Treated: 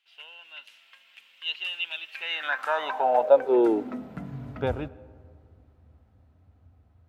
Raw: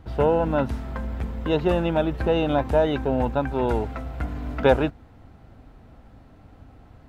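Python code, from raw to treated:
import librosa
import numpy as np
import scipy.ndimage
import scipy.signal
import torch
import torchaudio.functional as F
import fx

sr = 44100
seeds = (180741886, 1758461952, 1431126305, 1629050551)

y = fx.doppler_pass(x, sr, speed_mps=10, closest_m=7.0, pass_at_s=2.66)
y = fx.rev_freeverb(y, sr, rt60_s=2.1, hf_ratio=0.3, predelay_ms=55, drr_db=20.0)
y = fx.filter_sweep_highpass(y, sr, from_hz=2800.0, to_hz=78.0, start_s=2.09, end_s=4.78, q=5.7)
y = y * 10.0 ** (-1.5 / 20.0)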